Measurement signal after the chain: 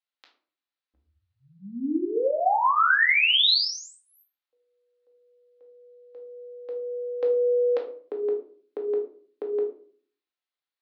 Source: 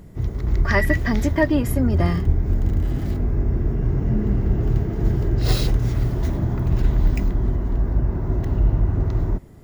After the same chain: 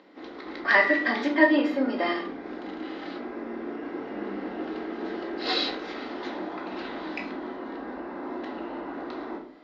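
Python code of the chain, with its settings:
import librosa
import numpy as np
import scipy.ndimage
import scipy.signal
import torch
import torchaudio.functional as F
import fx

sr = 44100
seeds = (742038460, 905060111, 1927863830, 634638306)

y = scipy.signal.sosfilt(scipy.signal.ellip(3, 1.0, 40, [290.0, 4200.0], 'bandpass', fs=sr, output='sos'), x)
y = fx.low_shelf(y, sr, hz=500.0, db=-11.0)
y = fx.room_shoebox(y, sr, seeds[0], volume_m3=420.0, walls='furnished', distance_m=2.1)
y = F.gain(torch.from_numpy(y), 2.0).numpy()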